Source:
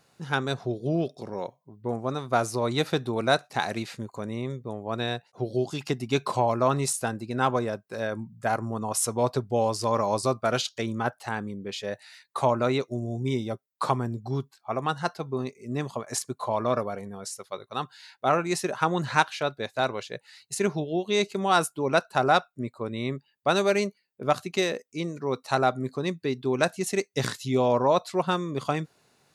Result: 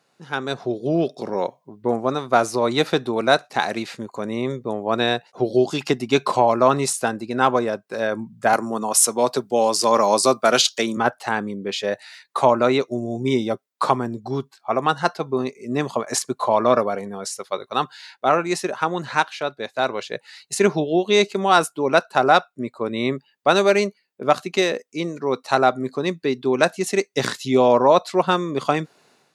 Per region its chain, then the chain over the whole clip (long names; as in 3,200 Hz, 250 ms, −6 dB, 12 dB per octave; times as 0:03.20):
0:08.53–0:10.97: high-pass filter 140 Hz 24 dB per octave + high-shelf EQ 4,200 Hz +11 dB
whole clip: high-pass filter 200 Hz 12 dB per octave; high-shelf EQ 9,100 Hz −8 dB; automatic gain control; level −1 dB